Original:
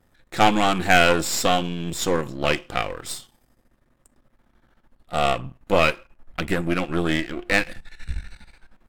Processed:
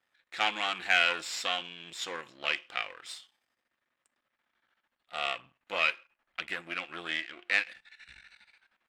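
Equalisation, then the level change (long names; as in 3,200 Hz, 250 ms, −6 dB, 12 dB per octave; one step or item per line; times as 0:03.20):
resonant band-pass 2,600 Hz, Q 1.1
−4.0 dB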